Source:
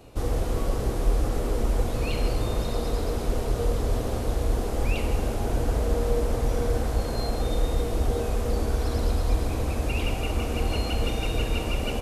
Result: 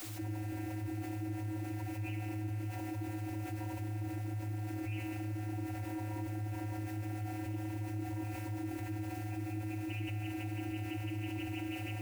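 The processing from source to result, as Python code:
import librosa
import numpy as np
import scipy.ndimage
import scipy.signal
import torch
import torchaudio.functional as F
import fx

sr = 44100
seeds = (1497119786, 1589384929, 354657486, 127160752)

y = fx.lower_of_two(x, sr, delay_ms=0.44)
y = fx.vocoder(y, sr, bands=32, carrier='square', carrier_hz=106.0)
y = fx.ladder_lowpass(y, sr, hz=3000.0, resonance_pct=70)
y = fx.high_shelf(y, sr, hz=2300.0, db=-6.0)
y = fx.fixed_phaser(y, sr, hz=760.0, stages=8)
y = y + 10.0 ** (-22.0 / 20.0) * np.pad(y, (int(140 * sr / 1000.0), 0))[:len(y)]
y = fx.quant_dither(y, sr, seeds[0], bits=12, dither='triangular')
y = fx.env_flatten(y, sr, amount_pct=70)
y = y * librosa.db_to_amplitude(6.5)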